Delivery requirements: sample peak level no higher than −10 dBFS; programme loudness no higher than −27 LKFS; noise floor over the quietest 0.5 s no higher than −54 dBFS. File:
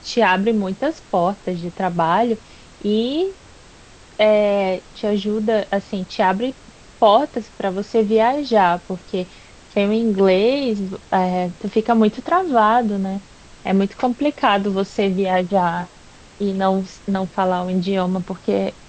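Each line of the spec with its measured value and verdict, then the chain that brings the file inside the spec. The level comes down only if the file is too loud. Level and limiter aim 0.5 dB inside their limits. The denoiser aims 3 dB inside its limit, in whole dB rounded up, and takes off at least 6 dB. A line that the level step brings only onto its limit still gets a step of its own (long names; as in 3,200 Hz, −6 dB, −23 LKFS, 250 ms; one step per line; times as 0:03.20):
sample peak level −3.0 dBFS: out of spec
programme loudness −19.5 LKFS: out of spec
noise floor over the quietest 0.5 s −45 dBFS: out of spec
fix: broadband denoise 6 dB, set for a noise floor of −45 dBFS
level −8 dB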